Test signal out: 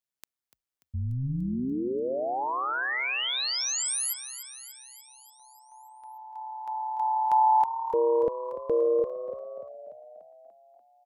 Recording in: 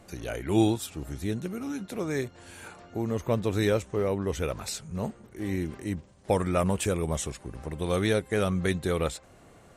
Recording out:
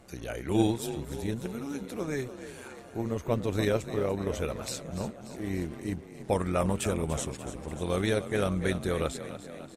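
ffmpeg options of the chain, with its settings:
-filter_complex "[0:a]asplit=2[a][b];[b]asplit=7[c][d][e][f][g][h][i];[c]adelay=292,afreqshift=36,volume=-12dB[j];[d]adelay=584,afreqshift=72,volume=-16.4dB[k];[e]adelay=876,afreqshift=108,volume=-20.9dB[l];[f]adelay=1168,afreqshift=144,volume=-25.3dB[m];[g]adelay=1460,afreqshift=180,volume=-29.7dB[n];[h]adelay=1752,afreqshift=216,volume=-34.2dB[o];[i]adelay=2044,afreqshift=252,volume=-38.6dB[p];[j][k][l][m][n][o][p]amix=inputs=7:normalize=0[q];[a][q]amix=inputs=2:normalize=0,tremolo=f=130:d=0.519"

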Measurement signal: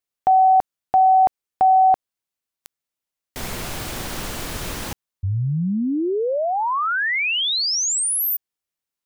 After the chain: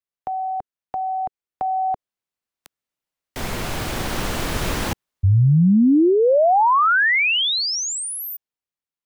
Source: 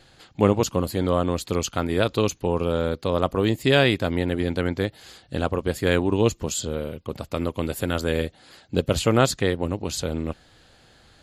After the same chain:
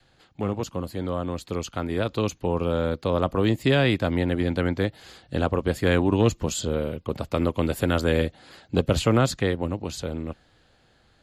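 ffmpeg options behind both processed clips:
-filter_complex "[0:a]adynamicequalizer=threshold=0.0178:dfrequency=410:dqfactor=4.2:tfrequency=410:tqfactor=4.2:attack=5:release=100:ratio=0.375:range=2.5:mode=cutabove:tftype=bell,acrossover=split=300[a][b];[b]acompressor=threshold=-19dB:ratio=4:attack=4.7:release=112:knee=2.83:detection=peak[c];[a][c]amix=inputs=2:normalize=0,acrossover=split=750|1800[d][e][f];[d]volume=13.5dB,asoftclip=hard,volume=-13.5dB[g];[g][e][f]amix=inputs=3:normalize=0,dynaudnorm=f=390:g=11:m=15.5dB,highshelf=f=4.4k:g=-7,volume=-6dB"

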